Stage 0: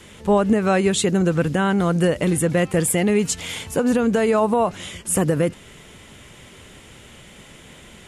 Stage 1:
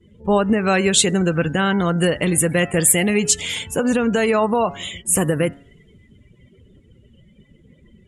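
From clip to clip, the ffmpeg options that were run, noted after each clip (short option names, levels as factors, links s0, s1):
-af "afftdn=nr=29:nf=-38,bandreject=f=139.6:t=h:w=4,bandreject=f=279.2:t=h:w=4,bandreject=f=418.8:t=h:w=4,bandreject=f=558.4:t=h:w=4,bandreject=f=698:t=h:w=4,bandreject=f=837.6:t=h:w=4,bandreject=f=977.2:t=h:w=4,bandreject=f=1116.8:t=h:w=4,bandreject=f=1256.4:t=h:w=4,bandreject=f=1396:t=h:w=4,bandreject=f=1535.6:t=h:w=4,bandreject=f=1675.2:t=h:w=4,bandreject=f=1814.8:t=h:w=4,bandreject=f=1954.4:t=h:w=4,adynamicequalizer=threshold=0.0141:dfrequency=1600:dqfactor=0.7:tfrequency=1600:tqfactor=0.7:attack=5:release=100:ratio=0.375:range=4:mode=boostabove:tftype=highshelf"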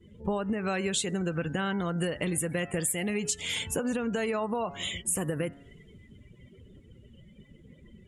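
-af "acompressor=threshold=0.0562:ratio=6,volume=0.75"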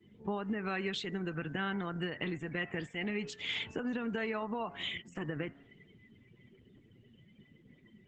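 -af "highpass=f=110:w=0.5412,highpass=f=110:w=1.3066,equalizer=f=170:t=q:w=4:g=-4,equalizer=f=550:t=q:w=4:g=-9,equalizer=f=1900:t=q:w=4:g=4,lowpass=f=4400:w=0.5412,lowpass=f=4400:w=1.3066,volume=0.631" -ar 48000 -c:a libopus -b:a 12k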